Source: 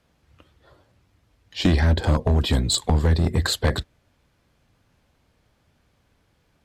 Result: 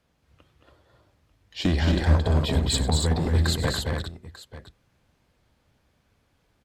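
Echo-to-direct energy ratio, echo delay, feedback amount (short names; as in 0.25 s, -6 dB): -1.5 dB, 98 ms, no steady repeat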